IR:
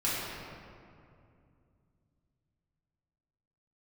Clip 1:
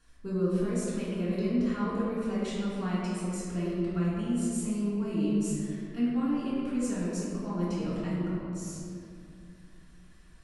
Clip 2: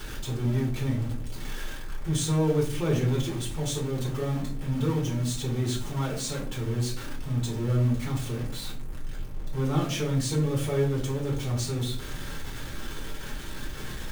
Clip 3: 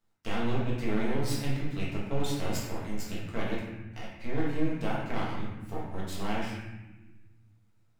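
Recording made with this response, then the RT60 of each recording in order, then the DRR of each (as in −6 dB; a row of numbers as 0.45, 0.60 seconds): 1; 2.5, 0.50, 1.2 seconds; −10.0, −4.5, −7.0 decibels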